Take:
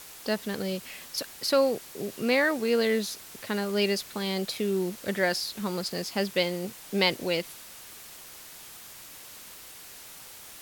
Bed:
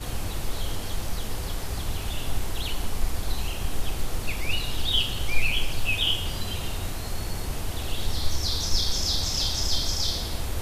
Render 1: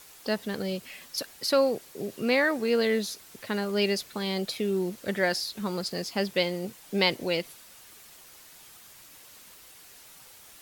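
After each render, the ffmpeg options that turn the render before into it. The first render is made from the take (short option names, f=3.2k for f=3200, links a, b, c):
-af "afftdn=nr=6:nf=-47"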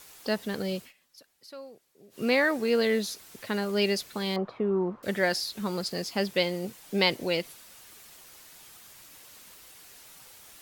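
-filter_complex "[0:a]asettb=1/sr,asplit=3[a][b][c];[a]atrim=end=4.364[d];[b]atrim=start=4.36:end=5.03,asetpts=PTS-STARTPTS,afade=t=in:d=0.004:c=qsin,afade=t=out:st=0.666:d=0.004:c=qsin,lowpass=f=1.1k:t=q:w=4.1[e];[c]atrim=start=5.026[f];[d][e]acrossfade=d=0.004:c1=hsin:c2=qsin[g];[g][f]acrossfade=d=0.004:c1=qsin:c2=hsin,asplit=3[h][i][j];[h]atrim=end=0.93,asetpts=PTS-STARTPTS,afade=t=out:st=0.8:d=0.13:silence=0.0891251[k];[i]atrim=start=0.93:end=2.1,asetpts=PTS-STARTPTS,volume=-21dB[l];[j]atrim=start=2.1,asetpts=PTS-STARTPTS,afade=t=in:d=0.13:silence=0.0891251[m];[k][l][m]concat=n=3:v=0:a=1"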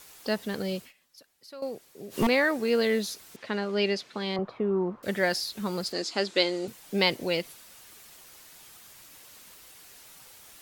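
-filter_complex "[0:a]asettb=1/sr,asplit=3[a][b][c];[a]atrim=end=1.624[d];[b]atrim=start=1.62:end=2.27,asetpts=PTS-STARTPTS,afade=t=in:d=0.004:c=qsin,afade=t=out:st=0.646:d=0.004:c=qsin,aeval=exprs='0.119*sin(PI/2*2.82*val(0)/0.119)':c=same[e];[c]atrim=start=2.266[f];[d][e]acrossfade=d=0.004:c1=hsin:c2=qsin[g];[g][f]acrossfade=d=0.004:c1=qsin:c2=hsin,asettb=1/sr,asplit=3[h][i][j];[h]atrim=end=3.364[k];[i]atrim=start=3.36:end=4.39,asetpts=PTS-STARTPTS,afade=t=in:d=0.004:c=qsin,afade=t=out:st=1.026:d=0.004:c=qsin,highpass=170,lowpass=4.7k[l];[j]atrim=start=4.386[m];[k][l]acrossfade=d=0.004:c1=hsin:c2=qsin[n];[n][m]acrossfade=d=0.004:c1=qsin:c2=hsin,asettb=1/sr,asplit=3[o][p][q];[o]atrim=end=5.924[r];[p]atrim=start=5.92:end=6.68,asetpts=PTS-STARTPTS,afade=t=in:d=0.004:c=qsin,afade=t=out:st=0.756:d=0.004:c=qsin,highpass=280,equalizer=f=320:t=q:w=4:g=9,equalizer=f=1.4k:t=q:w=4:g=5,equalizer=f=4k:t=q:w=4:g=8,equalizer=f=7.2k:t=q:w=4:g=5,lowpass=f=8.7k:w=0.5412,lowpass=f=8.7k:w=1.3066[s];[q]atrim=start=6.676[t];[r][s]acrossfade=d=0.004:c1=hsin:c2=qsin[u];[u][t]acrossfade=d=0.004:c1=qsin:c2=hsin"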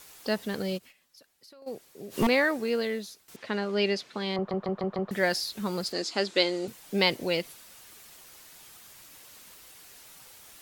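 -filter_complex "[0:a]asplit=3[a][b][c];[a]afade=t=out:st=0.77:d=0.02[d];[b]acompressor=threshold=-49dB:ratio=6:attack=3.2:release=140:knee=1:detection=peak,afade=t=in:st=0.77:d=0.02,afade=t=out:st=1.66:d=0.02[e];[c]afade=t=in:st=1.66:d=0.02[f];[d][e][f]amix=inputs=3:normalize=0,asplit=7[g][h][i][j][k][l][m];[g]atrim=end=3.28,asetpts=PTS-STARTPTS,afade=t=out:st=2.39:d=0.89:silence=0.16788[n];[h]atrim=start=3.28:end=4.512,asetpts=PTS-STARTPTS,afade=t=in:d=0.004:c=hsin:silence=0.16788[o];[i]atrim=start=4.358:end=4.512[p];[j]atrim=start=4.358:end=4.512[q];[k]atrim=start=4.358:end=4.512[r];[l]atrim=start=4.358:end=4.512[s];[m]atrim=start=5.108[t];[n][o]concat=n=2:v=0:a=1[u];[u][p]acrossfade=d=0.004:c1=hsin:c2=hsin[v];[v][q]acrossfade=d=0.004:c1=hsin:c2=hsin[w];[w][r]acrossfade=d=0.004:c1=hsin:c2=hsin[x];[x][s]acrossfade=d=0.004:c1=hsin:c2=hsin[y];[y][t]acrossfade=d=0.004:c1=hsin:c2=hsin"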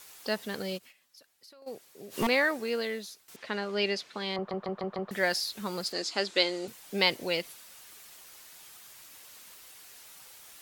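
-af "lowshelf=f=440:g=-7"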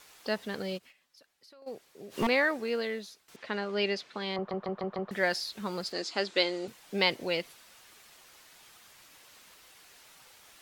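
-af "highshelf=f=6.9k:g=-11"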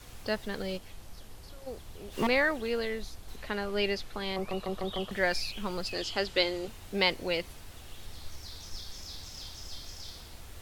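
-filter_complex "[1:a]volume=-18dB[a];[0:a][a]amix=inputs=2:normalize=0"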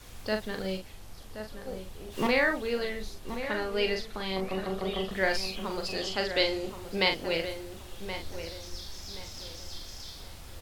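-filter_complex "[0:a]asplit=2[a][b];[b]adelay=42,volume=-5.5dB[c];[a][c]amix=inputs=2:normalize=0,asplit=2[d][e];[e]adelay=1075,lowpass=f=2.2k:p=1,volume=-9.5dB,asplit=2[f][g];[g]adelay=1075,lowpass=f=2.2k:p=1,volume=0.33,asplit=2[h][i];[i]adelay=1075,lowpass=f=2.2k:p=1,volume=0.33,asplit=2[j][k];[k]adelay=1075,lowpass=f=2.2k:p=1,volume=0.33[l];[d][f][h][j][l]amix=inputs=5:normalize=0"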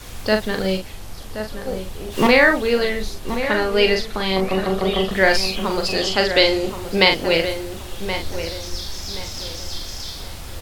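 -af "volume=12dB,alimiter=limit=-1dB:level=0:latency=1"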